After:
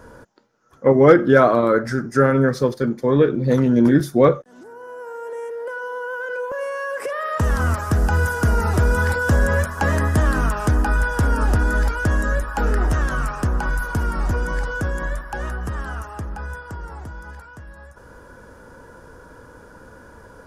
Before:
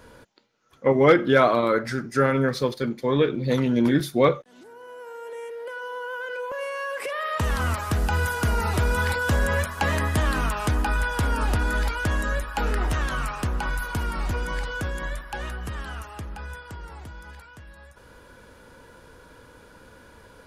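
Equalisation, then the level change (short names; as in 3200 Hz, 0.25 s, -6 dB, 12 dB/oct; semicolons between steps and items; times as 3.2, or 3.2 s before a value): dynamic EQ 960 Hz, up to -4 dB, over -36 dBFS, Q 1.4; band shelf 3000 Hz -10 dB 1.3 oct; high shelf 6200 Hz -7 dB; +6.0 dB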